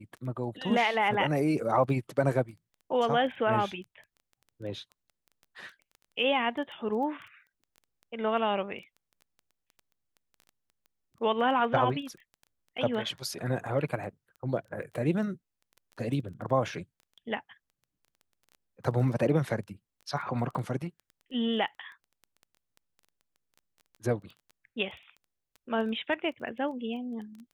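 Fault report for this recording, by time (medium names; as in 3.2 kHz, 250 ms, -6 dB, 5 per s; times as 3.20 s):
crackle 11 per s -40 dBFS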